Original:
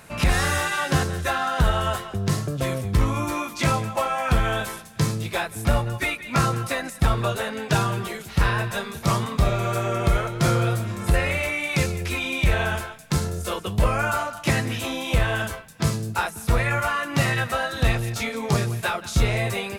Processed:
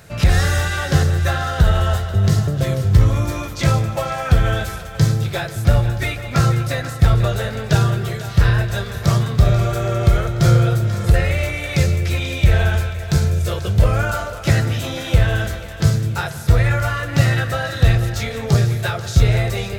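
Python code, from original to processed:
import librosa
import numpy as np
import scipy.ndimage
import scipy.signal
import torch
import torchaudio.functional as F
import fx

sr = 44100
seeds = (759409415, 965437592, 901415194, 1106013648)

y = fx.graphic_eq_15(x, sr, hz=(100, 250, 1000, 2500, 10000), db=(8, -7, -10, -6, -8))
y = fx.echo_split(y, sr, split_hz=460.0, low_ms=105, high_ms=488, feedback_pct=52, wet_db=-12.5)
y = fx.rev_spring(y, sr, rt60_s=3.0, pass_ms=(35, 42, 50), chirp_ms=45, drr_db=15.0)
y = F.gain(torch.from_numpy(y), 5.0).numpy()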